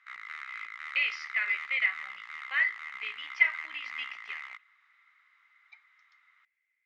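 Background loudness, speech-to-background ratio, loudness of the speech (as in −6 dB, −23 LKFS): −41.0 LKFS, 11.0 dB, −30.0 LKFS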